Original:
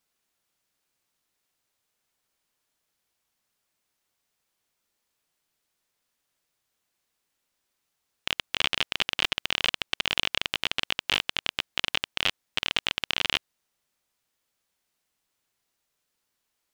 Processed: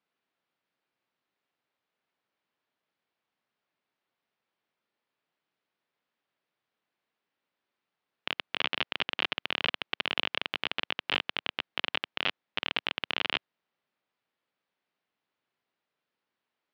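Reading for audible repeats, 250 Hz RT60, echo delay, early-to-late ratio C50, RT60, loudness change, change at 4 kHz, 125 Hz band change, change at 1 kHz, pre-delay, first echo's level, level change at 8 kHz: no echo, no reverb, no echo, no reverb, no reverb, -4.5 dB, -5.0 dB, -5.5 dB, -1.0 dB, no reverb, no echo, under -20 dB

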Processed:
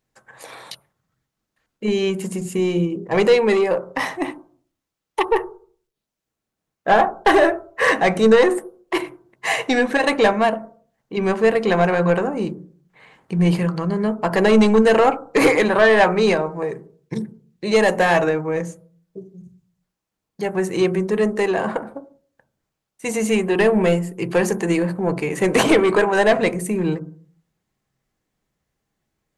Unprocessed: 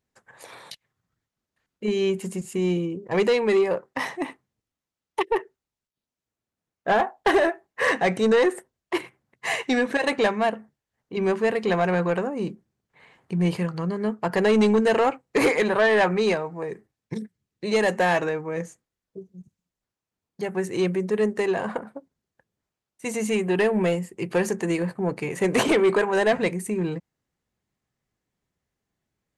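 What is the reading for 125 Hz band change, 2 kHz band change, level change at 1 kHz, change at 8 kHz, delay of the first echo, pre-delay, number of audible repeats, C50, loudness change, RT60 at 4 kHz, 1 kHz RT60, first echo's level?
+5.5 dB, +5.0 dB, +6.0 dB, +5.0 dB, no echo, 3 ms, no echo, 17.5 dB, +5.0 dB, 0.30 s, 0.40 s, no echo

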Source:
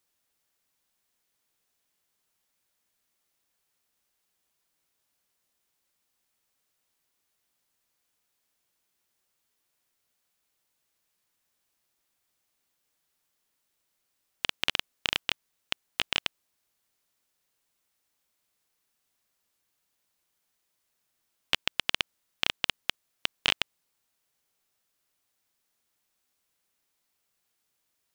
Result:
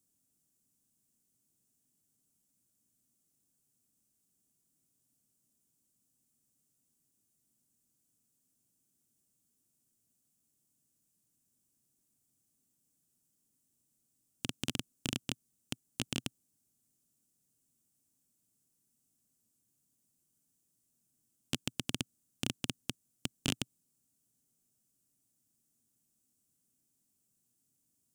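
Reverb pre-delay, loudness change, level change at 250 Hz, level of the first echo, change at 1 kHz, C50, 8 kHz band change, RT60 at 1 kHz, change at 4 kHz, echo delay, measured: no reverb, -9.0 dB, +8.5 dB, no echo, -12.5 dB, no reverb, +1.5 dB, no reverb, -11.5 dB, no echo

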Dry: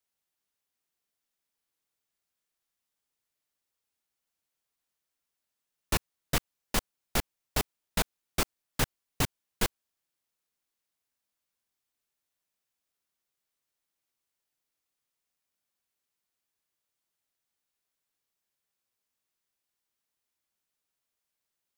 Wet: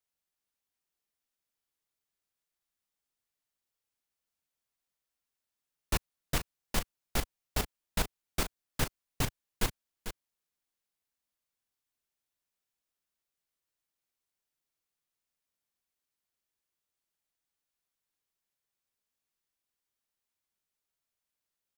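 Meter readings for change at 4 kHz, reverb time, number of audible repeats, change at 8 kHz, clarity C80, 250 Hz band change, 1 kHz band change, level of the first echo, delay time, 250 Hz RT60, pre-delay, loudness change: -3.5 dB, no reverb, 1, -3.5 dB, no reverb, -3.0 dB, -3.5 dB, -10.0 dB, 446 ms, no reverb, no reverb, -3.0 dB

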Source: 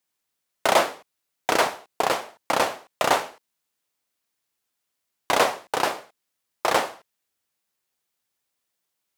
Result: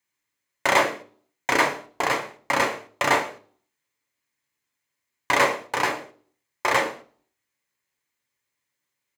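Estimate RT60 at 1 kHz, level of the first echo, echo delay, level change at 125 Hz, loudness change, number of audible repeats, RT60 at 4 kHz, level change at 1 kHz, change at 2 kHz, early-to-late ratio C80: 0.35 s, -22.0 dB, 112 ms, +3.5 dB, +0.5 dB, 1, 0.35 s, -0.5 dB, +4.5 dB, 19.0 dB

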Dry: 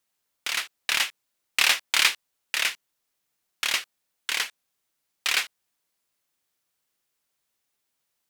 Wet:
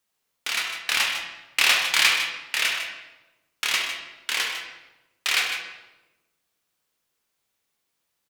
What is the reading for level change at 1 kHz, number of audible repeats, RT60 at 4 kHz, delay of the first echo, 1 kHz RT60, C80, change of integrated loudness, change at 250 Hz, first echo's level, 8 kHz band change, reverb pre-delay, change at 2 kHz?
+3.5 dB, 1, 0.80 s, 151 ms, 0.95 s, 5.0 dB, +2.0 dB, +3.5 dB, -11.0 dB, +1.0 dB, 10 ms, +3.0 dB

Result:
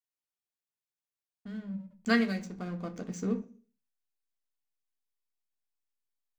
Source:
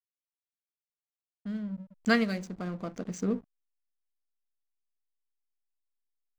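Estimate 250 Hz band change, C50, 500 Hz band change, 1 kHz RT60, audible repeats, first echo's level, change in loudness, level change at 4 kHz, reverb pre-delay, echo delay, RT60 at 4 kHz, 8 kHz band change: -1.0 dB, 16.0 dB, -2.5 dB, 0.40 s, no echo, no echo, -1.5 dB, -1.5 dB, 3 ms, no echo, 0.55 s, no reading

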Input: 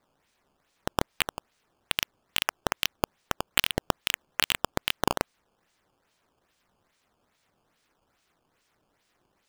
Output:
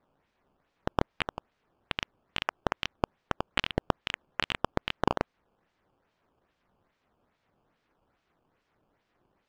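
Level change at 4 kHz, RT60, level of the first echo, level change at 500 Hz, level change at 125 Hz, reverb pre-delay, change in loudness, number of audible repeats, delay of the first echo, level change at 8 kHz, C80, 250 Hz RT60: -7.0 dB, no reverb, no echo, 0.0 dB, +1.0 dB, no reverb, -4.0 dB, no echo, no echo, -17.5 dB, no reverb, no reverb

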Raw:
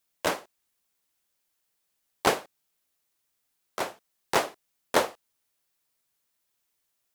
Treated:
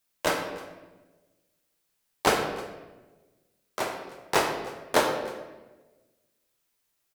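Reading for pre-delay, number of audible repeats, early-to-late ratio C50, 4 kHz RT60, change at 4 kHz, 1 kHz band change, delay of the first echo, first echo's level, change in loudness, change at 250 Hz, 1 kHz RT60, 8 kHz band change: 5 ms, 1, 5.0 dB, 0.95 s, +2.0 dB, +2.0 dB, 313 ms, -21.0 dB, +1.0 dB, +3.0 dB, 1.1 s, +1.5 dB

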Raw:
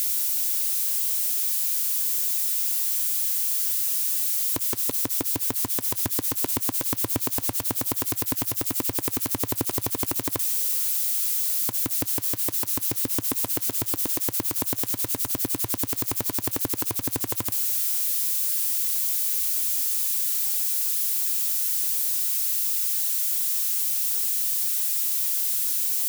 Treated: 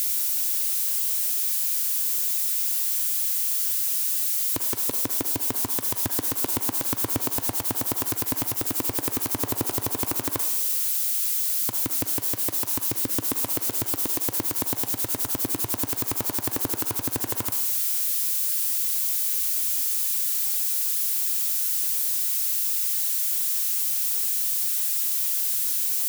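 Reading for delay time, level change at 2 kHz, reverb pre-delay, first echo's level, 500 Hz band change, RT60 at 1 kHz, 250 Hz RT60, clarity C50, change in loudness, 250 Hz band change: no echo, +1.0 dB, 38 ms, no echo, +0.5 dB, 0.75 s, 1.0 s, 6.5 dB, 0.0 dB, 0.0 dB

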